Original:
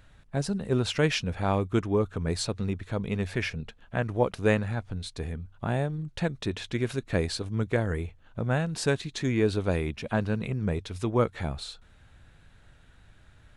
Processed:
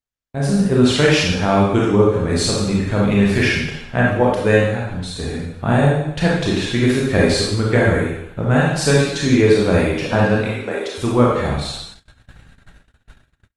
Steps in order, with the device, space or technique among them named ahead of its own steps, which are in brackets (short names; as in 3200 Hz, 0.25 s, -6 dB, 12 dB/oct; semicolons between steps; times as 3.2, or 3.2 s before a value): 10.41–10.98 HPF 360 Hz 24 dB/oct; speakerphone in a meeting room (reverb RT60 0.80 s, pre-delay 26 ms, DRR -4.5 dB; AGC gain up to 10 dB; gate -37 dBFS, range -43 dB; Opus 32 kbps 48000 Hz)